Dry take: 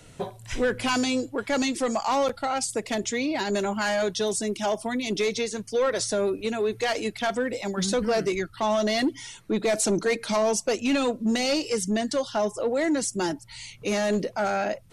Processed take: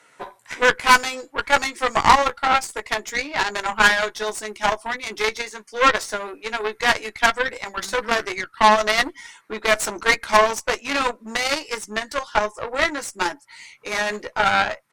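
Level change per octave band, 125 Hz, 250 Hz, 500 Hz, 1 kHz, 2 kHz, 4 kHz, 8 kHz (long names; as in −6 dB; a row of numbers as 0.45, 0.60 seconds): −3.5, −6.5, 0.0, +10.5, +11.5, +6.0, +1.0 decibels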